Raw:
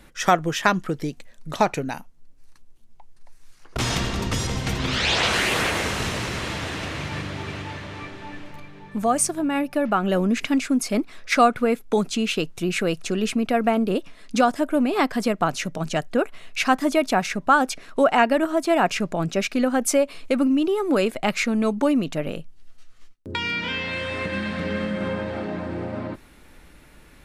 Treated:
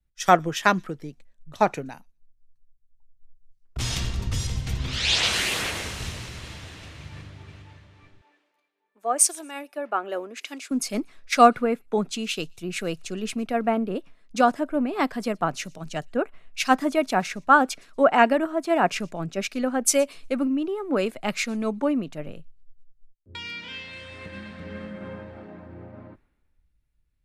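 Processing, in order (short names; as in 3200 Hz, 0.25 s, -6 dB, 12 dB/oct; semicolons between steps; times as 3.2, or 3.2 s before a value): 8.21–10.71 HPF 340 Hz 24 dB/oct; thin delay 0.12 s, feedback 31%, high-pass 4100 Hz, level -22 dB; three-band expander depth 100%; gain -5 dB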